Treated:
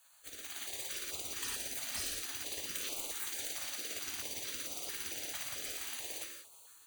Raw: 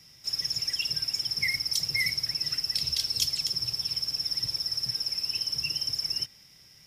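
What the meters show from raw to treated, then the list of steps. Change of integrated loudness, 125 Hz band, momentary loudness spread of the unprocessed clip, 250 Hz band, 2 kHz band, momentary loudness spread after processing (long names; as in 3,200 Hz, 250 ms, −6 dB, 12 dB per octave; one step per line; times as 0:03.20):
−11.0 dB, −16.5 dB, 2 LU, −3.5 dB, −10.5 dB, 5 LU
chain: running median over 3 samples
in parallel at −12 dB: comparator with hysteresis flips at −30 dBFS
on the sum: dynamic equaliser 150 Hz, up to +7 dB, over −58 dBFS, Q 2.9
frequency shifter +15 Hz
gain into a clipping stage and back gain 23.5 dB
downward compressor 10 to 1, threshold −35 dBFS, peak gain reduction 10 dB
thirty-one-band graphic EQ 200 Hz +8 dB, 1,000 Hz −9 dB, 12,500 Hz −10 dB
gate on every frequency bin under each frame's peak −25 dB weak
automatic gain control gain up to 7.5 dB
reverb whose tail is shaped and stops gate 200 ms flat, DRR 2 dB
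notch on a step sequencer 4.5 Hz 420–1,700 Hz
level +5 dB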